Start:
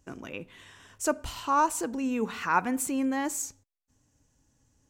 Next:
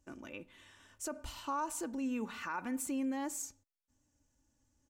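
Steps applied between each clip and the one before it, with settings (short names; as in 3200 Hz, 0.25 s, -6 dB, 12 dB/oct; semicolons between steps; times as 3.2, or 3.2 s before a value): comb 3.4 ms, depth 43%; limiter -20.5 dBFS, peak gain reduction 11 dB; gain -8.5 dB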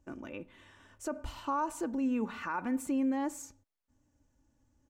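high shelf 2600 Hz -11.5 dB; gain +5.5 dB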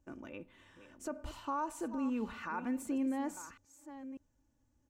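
reverse delay 0.596 s, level -12 dB; gain -4 dB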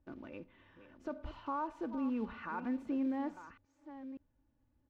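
block floating point 5-bit; air absorption 290 m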